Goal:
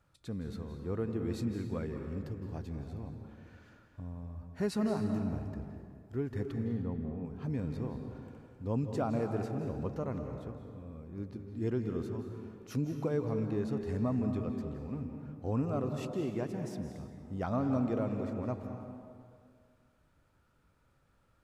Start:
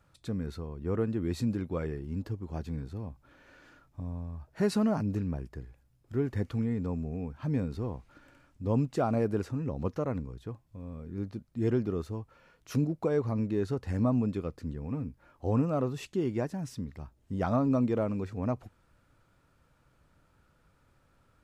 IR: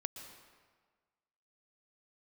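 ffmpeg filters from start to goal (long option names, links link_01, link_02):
-filter_complex "[0:a]asettb=1/sr,asplit=3[link_01][link_02][link_03];[link_01]atrim=end=6.524[link_04];[link_02]atrim=start=6.52:end=7.25,asetpts=PTS-STARTPTS,afade=type=in:duration=0.004:curve=qsin,afade=type=out:start_time=0.726:duration=0.004:curve=qsin,lowpass=1500[link_05];[link_03]atrim=start=7.246[link_06];[link_04][link_05]acrossfade=duration=0.004:curve1=hsin:curve2=qsin[link_07];[link_07][link_06]acrossfade=duration=0.004:curve1=qsin:curve2=hsin[link_08];[1:a]atrim=start_sample=2205,asetrate=31752,aresample=44100[link_09];[link_08][link_09]afir=irnorm=-1:irlink=0,volume=-4.5dB"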